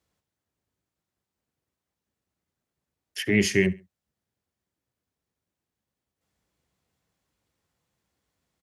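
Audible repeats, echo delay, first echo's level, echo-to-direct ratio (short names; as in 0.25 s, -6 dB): 2, 69 ms, -22.0 dB, -21.5 dB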